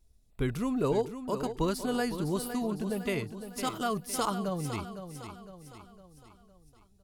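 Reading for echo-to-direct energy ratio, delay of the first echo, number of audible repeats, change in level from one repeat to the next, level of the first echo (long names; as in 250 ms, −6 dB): −9.0 dB, 508 ms, 4, −6.5 dB, −10.0 dB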